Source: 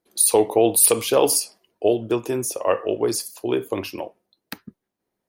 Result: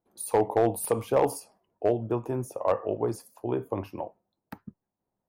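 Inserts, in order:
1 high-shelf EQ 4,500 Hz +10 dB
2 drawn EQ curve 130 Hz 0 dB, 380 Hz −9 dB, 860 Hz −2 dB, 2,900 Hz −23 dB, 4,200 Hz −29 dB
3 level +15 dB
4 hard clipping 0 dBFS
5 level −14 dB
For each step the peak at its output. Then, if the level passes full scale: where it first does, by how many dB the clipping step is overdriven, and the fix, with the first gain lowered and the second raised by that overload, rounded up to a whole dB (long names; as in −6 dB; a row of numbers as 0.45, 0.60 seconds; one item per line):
+6.5, −10.0, +5.0, 0.0, −14.0 dBFS
step 1, 5.0 dB
step 3 +10 dB, step 5 −9 dB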